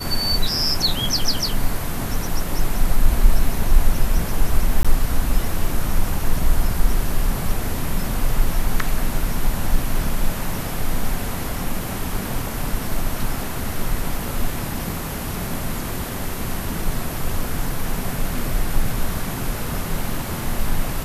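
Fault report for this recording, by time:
4.83–4.85 gap 16 ms

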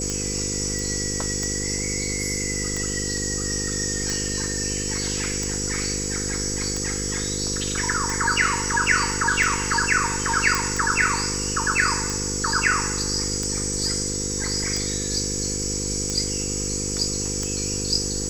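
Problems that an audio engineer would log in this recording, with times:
buzz 50 Hz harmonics 10 -30 dBFS
tick 45 rpm -14 dBFS
tone 7800 Hz -30 dBFS
0.79 pop
10.55 pop

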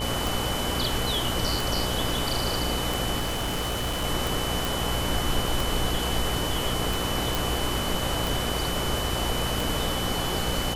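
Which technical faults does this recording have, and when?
buzz 60 Hz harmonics 14 -32 dBFS
tick 45 rpm
tone 3000 Hz -33 dBFS
3.19–4.05 clipped -24 dBFS
4.65 pop
7.35 pop

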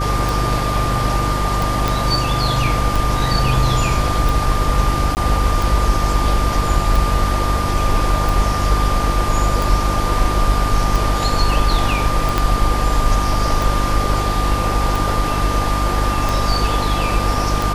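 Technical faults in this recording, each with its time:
hum 50 Hz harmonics 7 -21 dBFS
tick 45 rpm
tone 1200 Hz -22 dBFS
1.88 pop
5.15–5.17 gap 19 ms
12.38 pop -3 dBFS

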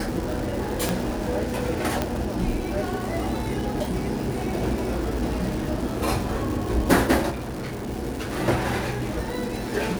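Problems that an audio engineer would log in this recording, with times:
crackle 450/s -30 dBFS
0.89 pop
2.02 pop -9 dBFS
7.3–7.89 clipped -28 dBFS

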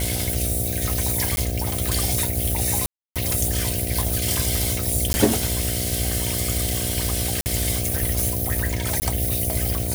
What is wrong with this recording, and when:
buzz 60 Hz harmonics 12 -28 dBFS
1.36–1.37 gap 11 ms
2.86–3.16 gap 0.297 s
5.13–5.14 gap 10 ms
7.41–7.46 gap 49 ms
9–9.02 gap 19 ms

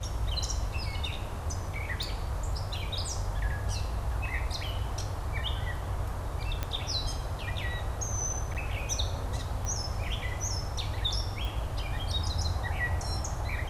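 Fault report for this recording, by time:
2.03 pop
6.63 pop -16 dBFS
8.54–8.55 gap 8 ms
9.65 pop -22 dBFS
11.45 pop

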